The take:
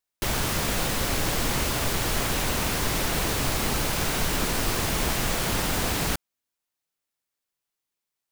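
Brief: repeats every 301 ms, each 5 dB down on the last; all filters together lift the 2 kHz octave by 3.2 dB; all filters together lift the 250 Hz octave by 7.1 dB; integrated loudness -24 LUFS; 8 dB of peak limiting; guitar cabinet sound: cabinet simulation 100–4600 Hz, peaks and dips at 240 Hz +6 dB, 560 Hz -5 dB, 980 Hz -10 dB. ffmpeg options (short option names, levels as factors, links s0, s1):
-af "equalizer=f=250:t=o:g=5.5,equalizer=f=2000:t=o:g=4.5,alimiter=limit=0.112:level=0:latency=1,highpass=100,equalizer=f=240:t=q:w=4:g=6,equalizer=f=560:t=q:w=4:g=-5,equalizer=f=980:t=q:w=4:g=-10,lowpass=f=4600:w=0.5412,lowpass=f=4600:w=1.3066,aecho=1:1:301|602|903|1204|1505|1806|2107:0.562|0.315|0.176|0.0988|0.0553|0.031|0.0173,volume=1.68"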